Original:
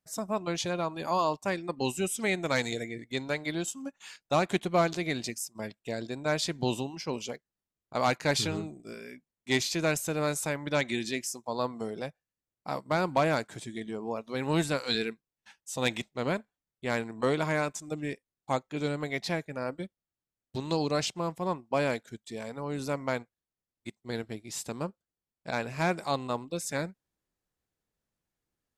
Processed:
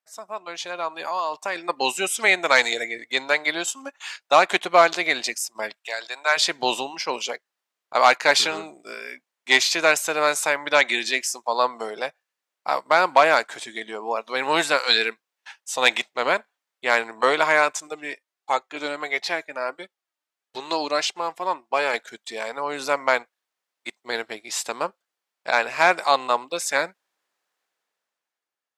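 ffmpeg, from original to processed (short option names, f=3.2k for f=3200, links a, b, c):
-filter_complex "[0:a]asettb=1/sr,asplit=3[a][b][c];[a]atrim=end=1.044[d];[b]atrim=start=1.04:end=1.56,asetpts=PTS-STARTPTS,afade=t=in:d=0.004:c=qsin,afade=t=out:st=0.516:d=0.004:c=qsin,acompressor=threshold=-32dB:ratio=4:attack=3.2:release=140:knee=1:detection=peak[e];[c]atrim=start=1.556[f];[d][e]acrossfade=d=0.004:c1=hsin:c2=qsin[g];[g][f]acrossfade=d=0.004:c1=qsin:c2=hsin,asplit=3[h][i][j];[h]afade=t=out:st=5.75:d=0.02[k];[i]highpass=850,afade=t=in:st=5.75:d=0.02,afade=t=out:st=6.36:d=0.02[l];[j]afade=t=in:st=6.36:d=0.02[m];[k][l][m]amix=inputs=3:normalize=0,asettb=1/sr,asplit=3[n][o][p];[n]atrim=end=17.874[q];[o]atrim=start=17.87:end=21.94,asetpts=PTS-STARTPTS,afade=t=in:d=0.004:c=qsin,afade=t=out:st=4.066:d=0.004:c=qsin,flanger=delay=2.3:depth=1:regen=53:speed=1.5:shape=sinusoidal[r];[p]atrim=start=21.936[s];[q][r]acrossfade=d=0.004:c1=hsin:c2=qsin[t];[t][s]acrossfade=d=0.004:c1=qsin:c2=hsin,highpass=770,highshelf=f=5.9k:g=-10.5,dynaudnorm=f=240:g=9:m=13dB,volume=2.5dB"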